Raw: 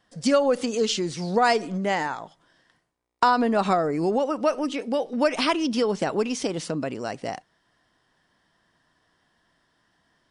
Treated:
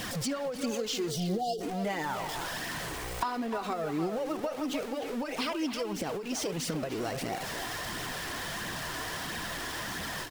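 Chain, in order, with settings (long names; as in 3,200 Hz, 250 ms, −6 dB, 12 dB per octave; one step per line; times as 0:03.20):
converter with a step at zero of −27.5 dBFS
time-frequency box erased 0:01.11–0:01.61, 830–2,800 Hz
downward compressor 6 to 1, threshold −26 dBFS, peak gain reduction 11.5 dB
flanger 1.5 Hz, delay 0.3 ms, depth 2.7 ms, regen −30%
far-end echo of a speakerphone 300 ms, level −7 dB
every ending faded ahead of time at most 110 dB per second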